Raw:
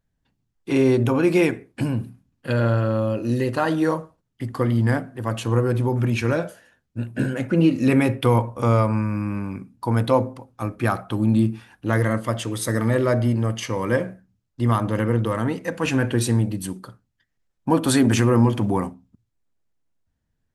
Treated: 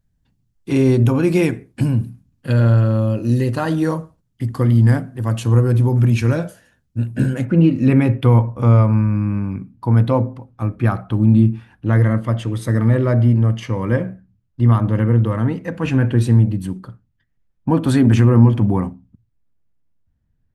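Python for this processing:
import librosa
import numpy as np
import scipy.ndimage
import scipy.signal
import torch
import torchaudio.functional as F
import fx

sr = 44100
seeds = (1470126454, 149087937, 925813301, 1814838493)

y = fx.bass_treble(x, sr, bass_db=10, treble_db=fx.steps((0.0, 4.0), (7.44, -9.0)))
y = y * 10.0 ** (-1.0 / 20.0)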